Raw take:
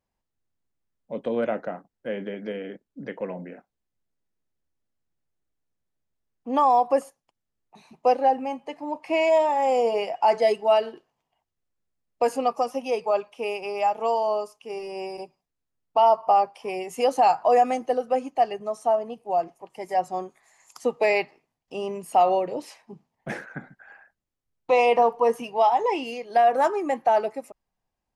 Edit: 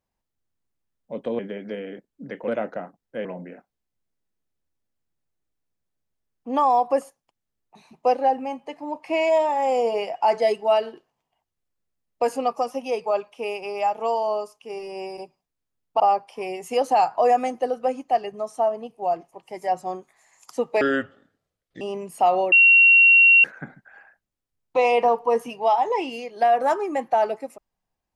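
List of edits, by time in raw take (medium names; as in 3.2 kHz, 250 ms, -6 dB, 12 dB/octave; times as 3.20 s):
1.39–2.16 s: move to 3.25 s
16.00–16.27 s: delete
21.08–21.75 s: speed 67%
22.46–23.38 s: bleep 2.74 kHz -10 dBFS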